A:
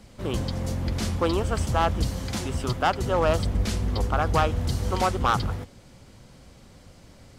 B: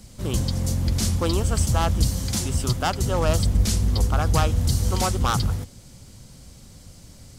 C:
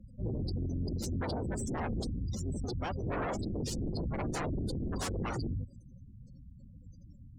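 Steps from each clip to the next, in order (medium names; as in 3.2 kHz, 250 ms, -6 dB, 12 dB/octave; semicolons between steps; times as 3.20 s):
tone controls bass +8 dB, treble +14 dB; trim -2.5 dB
wavefolder -23 dBFS; spectral gate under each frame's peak -15 dB strong; Chebyshev shaper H 2 -15 dB, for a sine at -22 dBFS; trim -5.5 dB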